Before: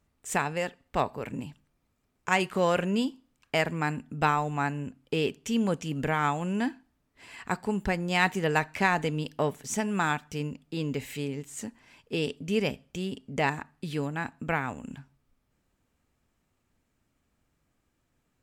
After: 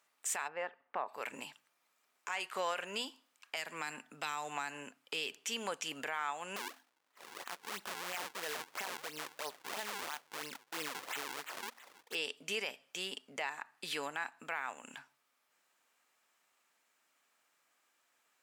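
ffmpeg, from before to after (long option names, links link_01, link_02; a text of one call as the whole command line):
ffmpeg -i in.wav -filter_complex "[0:a]asplit=3[link_01][link_02][link_03];[link_01]afade=type=out:start_time=0.47:duration=0.02[link_04];[link_02]lowpass=1400,afade=type=in:start_time=0.47:duration=0.02,afade=type=out:start_time=1.07:duration=0.02[link_05];[link_03]afade=type=in:start_time=1.07:duration=0.02[link_06];[link_04][link_05][link_06]amix=inputs=3:normalize=0,asettb=1/sr,asplit=3[link_07][link_08][link_09];[link_07]atrim=end=3.564[link_10];[link_08]atrim=start=3.56:end=5.36,asetpts=PTS-STARTPTS,afade=type=in:duration=0.004:curve=qsin,afade=type=out:start_time=1.796:duration=0.004:curve=qsin,acrossover=split=280|3000[link_11][link_12][link_13];[link_12]acompressor=threshold=-34dB:ratio=6:attack=3.2:release=140:knee=2.83:detection=peak[link_14];[link_11][link_14][link_13]amix=inputs=3:normalize=0[link_15];[link_09]atrim=start=5.356[link_16];[link_10][link_15]acrossfade=duration=0.004:curve1=hsin:curve2=qsin[link_17];[link_17][link_16]acrossfade=duration=0.004:curve1=qsin:curve2=hsin,asettb=1/sr,asplit=3[link_18][link_19][link_20];[link_18]atrim=end=6.564[link_21];[link_19]atrim=start=6.56:end=12.15,asetpts=PTS-STARTPTS,afade=type=in:duration=0.004:curve=qsin,afade=type=out:start_time=5.586:duration=0.004:curve=qsin,acrusher=samples=41:mix=1:aa=0.000001:lfo=1:lforange=65.6:lforate=3[link_22];[link_20]atrim=start=12.146[link_23];[link_21][link_22]acrossfade=duration=0.004:curve1=hsin:curve2=qsin[link_24];[link_24][link_23]acrossfade=duration=0.004:curve1=qsin:curve2=hsin,highpass=880,acompressor=threshold=-40dB:ratio=3,alimiter=level_in=7dB:limit=-24dB:level=0:latency=1:release=14,volume=-7dB,volume=5.5dB" out.wav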